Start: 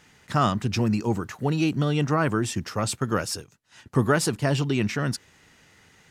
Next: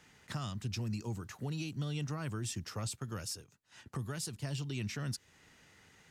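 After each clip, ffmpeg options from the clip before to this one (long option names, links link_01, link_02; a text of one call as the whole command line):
ffmpeg -i in.wav -filter_complex "[0:a]acrossover=split=140|3000[link_01][link_02][link_03];[link_02]acompressor=threshold=-38dB:ratio=3[link_04];[link_01][link_04][link_03]amix=inputs=3:normalize=0,alimiter=limit=-22.5dB:level=0:latency=1:release=321,volume=-6dB" out.wav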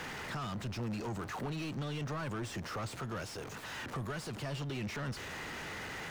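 ffmpeg -i in.wav -filter_complex "[0:a]aeval=exprs='val(0)+0.5*0.00631*sgn(val(0))':channel_layout=same,asplit=2[link_01][link_02];[link_02]highpass=frequency=720:poles=1,volume=26dB,asoftclip=type=tanh:threshold=-27.5dB[link_03];[link_01][link_03]amix=inputs=2:normalize=0,lowpass=frequency=1400:poles=1,volume=-6dB,volume=-2.5dB" out.wav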